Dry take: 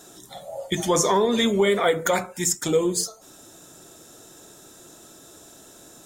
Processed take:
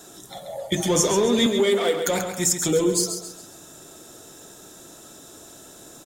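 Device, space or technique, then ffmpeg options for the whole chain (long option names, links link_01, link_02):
one-band saturation: -filter_complex "[0:a]acrossover=split=510|2700[link_01][link_02][link_03];[link_02]asoftclip=type=tanh:threshold=-31.5dB[link_04];[link_01][link_04][link_03]amix=inputs=3:normalize=0,asettb=1/sr,asplit=3[link_05][link_06][link_07];[link_05]atrim=end=1.464[link_08];[link_06]atrim=start=1.46:end=2.07,asetpts=PTS-STARTPTS,afade=type=in:duration=0.004:curve=qsin,afade=type=out:start_time=0.606:duration=0.004:curve=qsin,highpass=300[link_09];[link_07]atrim=start=2.066[link_10];[link_08][link_09]acrossfade=duration=0.004:curve1=hsin:curve2=qsin[link_11];[link_11][link_10]acrossfade=duration=0.004:curve1=qsin:curve2=hsin,aecho=1:1:135|270|405|540:0.398|0.151|0.0575|0.0218,volume=2dB"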